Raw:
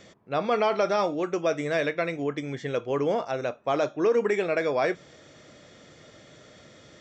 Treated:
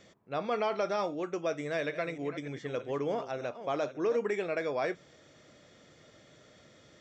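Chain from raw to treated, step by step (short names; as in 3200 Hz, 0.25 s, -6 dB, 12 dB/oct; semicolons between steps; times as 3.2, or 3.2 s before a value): 1.58–4.17 reverse delay 0.3 s, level -11.5 dB; gain -7 dB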